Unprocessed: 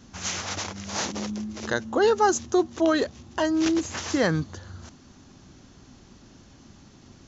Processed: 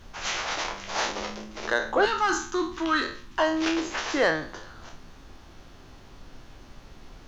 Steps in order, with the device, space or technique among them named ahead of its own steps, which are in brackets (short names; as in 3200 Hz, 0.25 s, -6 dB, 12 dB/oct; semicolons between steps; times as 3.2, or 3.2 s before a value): spectral trails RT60 0.45 s; aircraft cabin announcement (BPF 460–3900 Hz; soft clip -14 dBFS, distortion -21 dB; brown noise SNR 18 dB); 2.05–3.39 band shelf 570 Hz -16 dB 1.1 oct; gain +3 dB